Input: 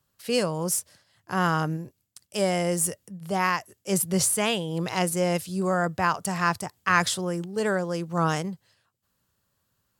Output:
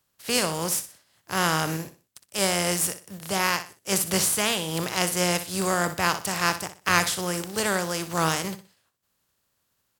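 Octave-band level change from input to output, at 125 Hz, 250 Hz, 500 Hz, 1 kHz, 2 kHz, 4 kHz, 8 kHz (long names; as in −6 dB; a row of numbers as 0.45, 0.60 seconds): −2.5, −2.0, −1.5, −0.5, +2.0, +5.5, +3.0 decibels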